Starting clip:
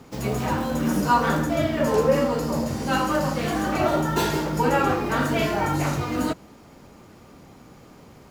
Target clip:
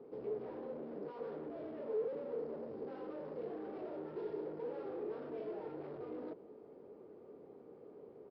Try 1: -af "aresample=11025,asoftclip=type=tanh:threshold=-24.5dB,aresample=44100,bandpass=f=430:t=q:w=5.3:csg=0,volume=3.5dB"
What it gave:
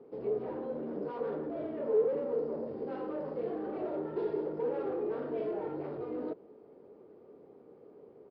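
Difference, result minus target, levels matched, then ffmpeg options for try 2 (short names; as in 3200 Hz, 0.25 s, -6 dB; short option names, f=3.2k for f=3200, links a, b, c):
soft clip: distortion -5 dB
-af "aresample=11025,asoftclip=type=tanh:threshold=-35dB,aresample=44100,bandpass=f=430:t=q:w=5.3:csg=0,volume=3.5dB"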